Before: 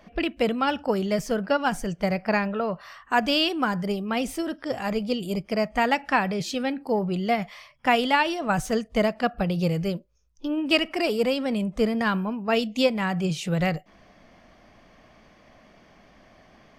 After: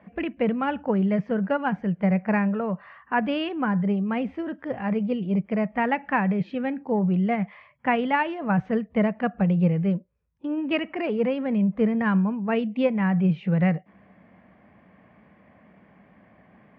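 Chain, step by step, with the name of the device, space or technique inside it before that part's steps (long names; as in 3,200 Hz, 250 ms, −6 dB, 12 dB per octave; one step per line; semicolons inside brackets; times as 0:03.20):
bass cabinet (loudspeaker in its box 69–2,200 Hz, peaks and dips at 190 Hz +7 dB, 360 Hz −3 dB, 670 Hz −4 dB, 1,300 Hz −5 dB)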